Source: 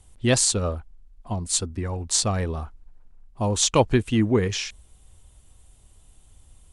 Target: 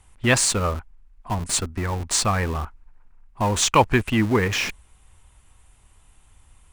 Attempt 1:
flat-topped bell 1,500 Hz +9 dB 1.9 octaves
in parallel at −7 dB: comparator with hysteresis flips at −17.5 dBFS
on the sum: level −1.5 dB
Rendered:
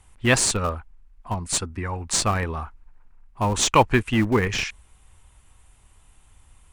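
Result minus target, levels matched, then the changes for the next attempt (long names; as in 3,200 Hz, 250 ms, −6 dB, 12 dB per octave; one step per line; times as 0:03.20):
comparator with hysteresis: distortion +6 dB
change: comparator with hysteresis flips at −28.5 dBFS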